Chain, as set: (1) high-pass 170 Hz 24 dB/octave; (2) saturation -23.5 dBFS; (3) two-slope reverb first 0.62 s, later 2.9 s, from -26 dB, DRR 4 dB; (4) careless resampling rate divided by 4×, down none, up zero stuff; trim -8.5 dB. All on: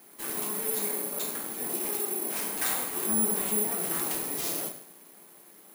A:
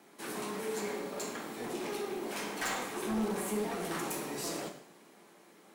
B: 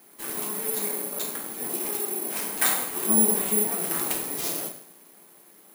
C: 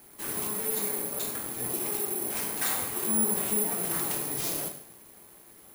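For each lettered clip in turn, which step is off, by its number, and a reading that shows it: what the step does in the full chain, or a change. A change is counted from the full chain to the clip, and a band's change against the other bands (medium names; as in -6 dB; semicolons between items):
4, 8 kHz band -13.0 dB; 2, distortion -9 dB; 1, 125 Hz band +4.0 dB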